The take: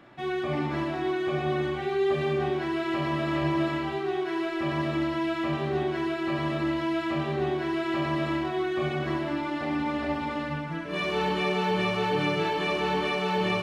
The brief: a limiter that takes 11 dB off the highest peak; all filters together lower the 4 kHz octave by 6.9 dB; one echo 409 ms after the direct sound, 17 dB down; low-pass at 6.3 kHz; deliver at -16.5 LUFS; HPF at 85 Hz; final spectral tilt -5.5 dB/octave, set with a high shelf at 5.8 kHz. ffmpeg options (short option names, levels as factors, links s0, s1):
-af "highpass=85,lowpass=6300,equalizer=f=4000:t=o:g=-9,highshelf=f=5800:g=-3.5,alimiter=level_in=1.26:limit=0.0631:level=0:latency=1,volume=0.794,aecho=1:1:409:0.141,volume=7.08"